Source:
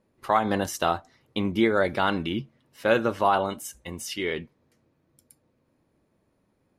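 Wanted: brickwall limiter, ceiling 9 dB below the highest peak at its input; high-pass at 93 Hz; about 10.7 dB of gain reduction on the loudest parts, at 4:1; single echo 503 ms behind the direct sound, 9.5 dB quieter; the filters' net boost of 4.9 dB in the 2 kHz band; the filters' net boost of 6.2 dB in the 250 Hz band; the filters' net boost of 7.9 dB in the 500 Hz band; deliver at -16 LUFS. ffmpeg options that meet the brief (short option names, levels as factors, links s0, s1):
-af "highpass=93,equalizer=f=250:t=o:g=5.5,equalizer=f=500:t=o:g=8,equalizer=f=2000:t=o:g=6,acompressor=threshold=0.0794:ratio=4,alimiter=limit=0.168:level=0:latency=1,aecho=1:1:503:0.335,volume=4.47"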